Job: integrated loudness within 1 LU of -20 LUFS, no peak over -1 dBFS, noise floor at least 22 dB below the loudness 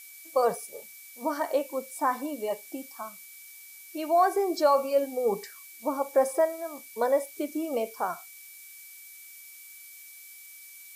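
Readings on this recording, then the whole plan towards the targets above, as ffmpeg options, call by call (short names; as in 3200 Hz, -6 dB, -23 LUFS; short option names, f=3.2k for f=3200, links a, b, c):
steady tone 2300 Hz; tone level -52 dBFS; noise floor -48 dBFS; noise floor target -51 dBFS; loudness -28.5 LUFS; peak -11.5 dBFS; loudness target -20.0 LUFS
-> -af "bandreject=f=2.3k:w=30"
-af "afftdn=nr=6:nf=-48"
-af "volume=8.5dB"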